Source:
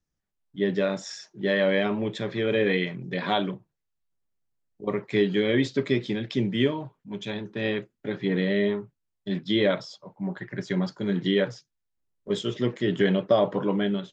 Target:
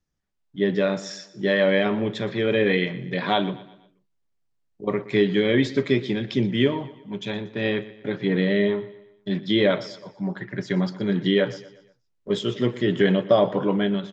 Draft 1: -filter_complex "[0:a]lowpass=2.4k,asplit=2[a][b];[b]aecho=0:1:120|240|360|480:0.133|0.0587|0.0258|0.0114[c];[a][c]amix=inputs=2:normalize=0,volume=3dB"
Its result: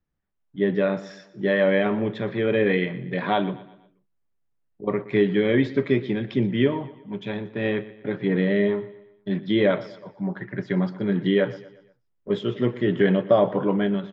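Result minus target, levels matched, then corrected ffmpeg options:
8000 Hz band -15.5 dB
-filter_complex "[0:a]lowpass=7k,asplit=2[a][b];[b]aecho=0:1:120|240|360|480:0.133|0.0587|0.0258|0.0114[c];[a][c]amix=inputs=2:normalize=0,volume=3dB"

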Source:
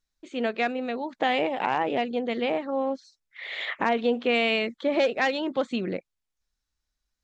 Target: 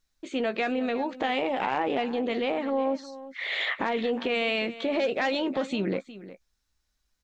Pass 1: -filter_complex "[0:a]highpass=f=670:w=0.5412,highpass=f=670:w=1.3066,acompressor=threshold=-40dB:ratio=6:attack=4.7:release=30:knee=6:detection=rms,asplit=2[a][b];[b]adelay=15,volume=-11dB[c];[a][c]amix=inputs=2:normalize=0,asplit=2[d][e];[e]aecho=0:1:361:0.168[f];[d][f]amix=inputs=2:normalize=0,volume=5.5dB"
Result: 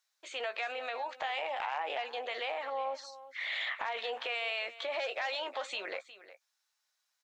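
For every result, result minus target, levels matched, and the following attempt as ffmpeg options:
compressor: peak gain reduction +6 dB; 500 Hz band -2.5 dB
-filter_complex "[0:a]highpass=f=670:w=0.5412,highpass=f=670:w=1.3066,acompressor=threshold=-30.5dB:ratio=6:attack=4.7:release=30:knee=6:detection=rms,asplit=2[a][b];[b]adelay=15,volume=-11dB[c];[a][c]amix=inputs=2:normalize=0,asplit=2[d][e];[e]aecho=0:1:361:0.168[f];[d][f]amix=inputs=2:normalize=0,volume=5.5dB"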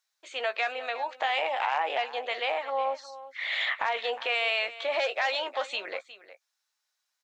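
500 Hz band -3.0 dB
-filter_complex "[0:a]acompressor=threshold=-30.5dB:ratio=6:attack=4.7:release=30:knee=6:detection=rms,asplit=2[a][b];[b]adelay=15,volume=-11dB[c];[a][c]amix=inputs=2:normalize=0,asplit=2[d][e];[e]aecho=0:1:361:0.168[f];[d][f]amix=inputs=2:normalize=0,volume=5.5dB"

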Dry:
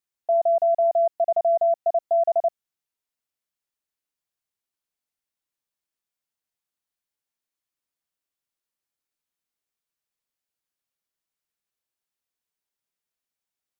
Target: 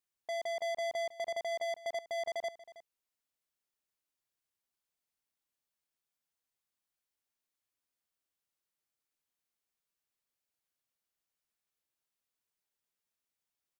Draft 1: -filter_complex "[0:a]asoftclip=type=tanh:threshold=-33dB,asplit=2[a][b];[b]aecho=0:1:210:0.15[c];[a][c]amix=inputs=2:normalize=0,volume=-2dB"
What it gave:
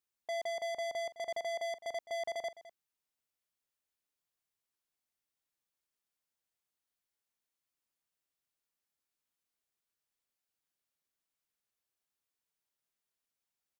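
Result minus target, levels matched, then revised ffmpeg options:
echo 0.109 s early
-filter_complex "[0:a]asoftclip=type=tanh:threshold=-33dB,asplit=2[a][b];[b]aecho=0:1:319:0.15[c];[a][c]amix=inputs=2:normalize=0,volume=-2dB"

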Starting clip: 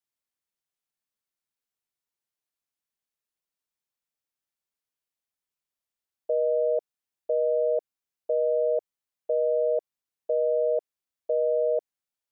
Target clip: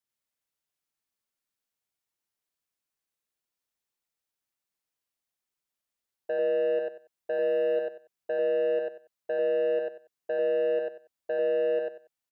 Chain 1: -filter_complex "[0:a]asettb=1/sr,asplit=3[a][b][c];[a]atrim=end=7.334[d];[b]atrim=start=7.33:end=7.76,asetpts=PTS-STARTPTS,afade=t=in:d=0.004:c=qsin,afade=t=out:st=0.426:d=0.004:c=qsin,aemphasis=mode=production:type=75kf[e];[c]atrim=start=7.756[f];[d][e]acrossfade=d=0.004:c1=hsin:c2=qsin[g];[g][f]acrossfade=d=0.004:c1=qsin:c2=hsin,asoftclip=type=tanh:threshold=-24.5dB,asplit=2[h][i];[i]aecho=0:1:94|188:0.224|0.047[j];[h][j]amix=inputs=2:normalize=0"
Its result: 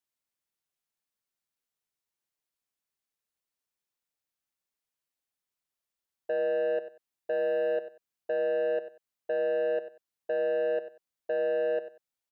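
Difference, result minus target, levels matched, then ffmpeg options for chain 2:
echo-to-direct -10 dB
-filter_complex "[0:a]asettb=1/sr,asplit=3[a][b][c];[a]atrim=end=7.334[d];[b]atrim=start=7.33:end=7.76,asetpts=PTS-STARTPTS,afade=t=in:d=0.004:c=qsin,afade=t=out:st=0.426:d=0.004:c=qsin,aemphasis=mode=production:type=75kf[e];[c]atrim=start=7.756[f];[d][e]acrossfade=d=0.004:c1=hsin:c2=qsin[g];[g][f]acrossfade=d=0.004:c1=qsin:c2=hsin,asoftclip=type=tanh:threshold=-24.5dB,asplit=2[h][i];[i]aecho=0:1:94|188|282:0.708|0.149|0.0312[j];[h][j]amix=inputs=2:normalize=0"

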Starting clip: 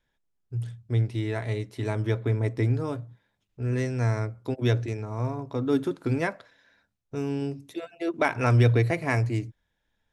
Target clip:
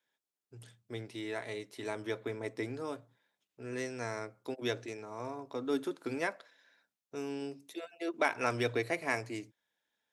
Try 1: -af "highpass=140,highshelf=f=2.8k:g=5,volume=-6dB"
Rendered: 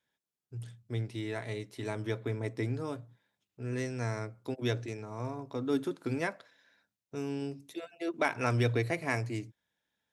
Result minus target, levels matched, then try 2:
125 Hz band +10.0 dB
-af "highpass=310,highshelf=f=2.8k:g=5,volume=-6dB"

